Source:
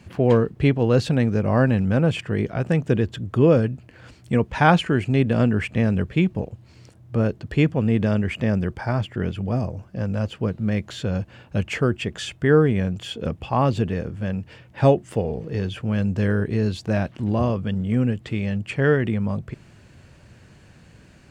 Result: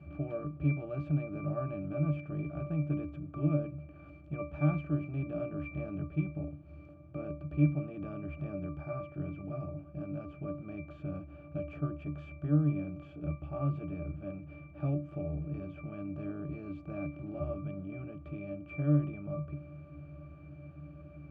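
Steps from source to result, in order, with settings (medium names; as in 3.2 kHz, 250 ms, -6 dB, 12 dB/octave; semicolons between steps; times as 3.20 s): spectral levelling over time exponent 0.6; pitch-class resonator D, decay 0.32 s; trim -3.5 dB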